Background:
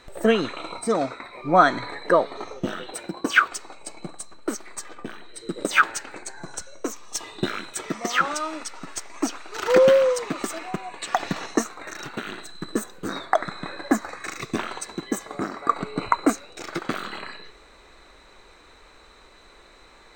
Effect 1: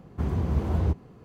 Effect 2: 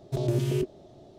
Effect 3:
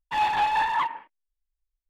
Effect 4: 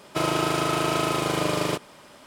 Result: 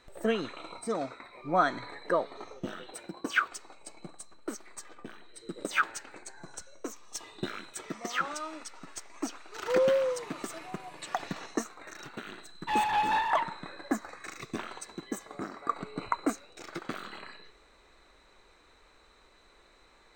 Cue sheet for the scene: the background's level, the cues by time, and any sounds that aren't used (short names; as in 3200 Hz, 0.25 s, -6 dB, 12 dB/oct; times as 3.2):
background -9.5 dB
9.5 add 4 -11.5 dB + resonator 900 Hz, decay 0.35 s, mix 90%
12.56 add 3 -4 dB
not used: 1, 2